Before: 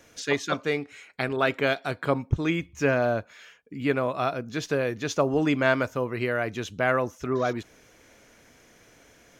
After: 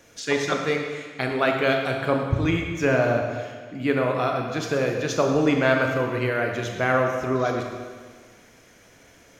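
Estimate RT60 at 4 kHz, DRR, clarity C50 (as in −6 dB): 1.5 s, 2.0 dB, 3.5 dB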